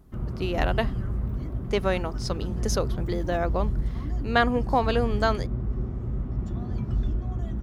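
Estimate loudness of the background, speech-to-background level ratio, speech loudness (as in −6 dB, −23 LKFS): −31.0 LKFS, 3.0 dB, −28.0 LKFS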